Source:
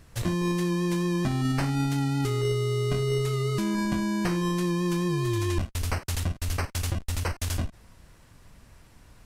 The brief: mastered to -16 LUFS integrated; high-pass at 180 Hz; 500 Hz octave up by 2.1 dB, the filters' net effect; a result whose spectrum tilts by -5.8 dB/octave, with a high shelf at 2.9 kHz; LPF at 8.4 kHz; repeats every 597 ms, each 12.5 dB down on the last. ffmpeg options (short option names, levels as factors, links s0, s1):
-af "highpass=180,lowpass=8400,equalizer=f=500:t=o:g=3.5,highshelf=f=2900:g=-4,aecho=1:1:597|1194|1791:0.237|0.0569|0.0137,volume=4.47"